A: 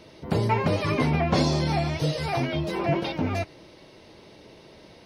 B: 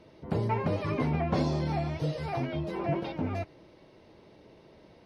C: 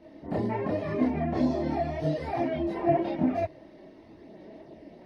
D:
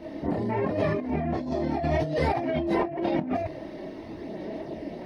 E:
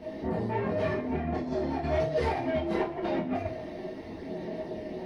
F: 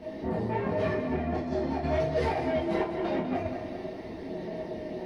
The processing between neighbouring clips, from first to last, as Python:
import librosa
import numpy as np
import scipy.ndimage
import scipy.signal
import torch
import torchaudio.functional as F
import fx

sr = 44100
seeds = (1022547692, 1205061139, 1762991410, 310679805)

y1 = fx.high_shelf(x, sr, hz=2600.0, db=-11.0)
y1 = y1 * librosa.db_to_amplitude(-5.0)
y2 = fx.rider(y1, sr, range_db=10, speed_s=0.5)
y2 = fx.small_body(y2, sr, hz=(290.0, 650.0, 1800.0), ring_ms=20, db=12)
y2 = fx.chorus_voices(y2, sr, voices=4, hz=0.82, base_ms=27, depth_ms=2.7, mix_pct=60)
y2 = y2 * librosa.db_to_amplitude(-2.0)
y3 = fx.over_compress(y2, sr, threshold_db=-34.0, ratio=-1.0)
y3 = y3 * librosa.db_to_amplitude(6.5)
y4 = 10.0 ** (-22.0 / 20.0) * np.tanh(y3 / 10.0 ** (-22.0 / 20.0))
y4 = fx.rev_double_slope(y4, sr, seeds[0], early_s=0.24, late_s=2.4, knee_db=-20, drr_db=0.0)
y4 = y4 * librosa.db_to_amplitude(-3.5)
y5 = fx.echo_feedback(y4, sr, ms=199, feedback_pct=54, wet_db=-9.5)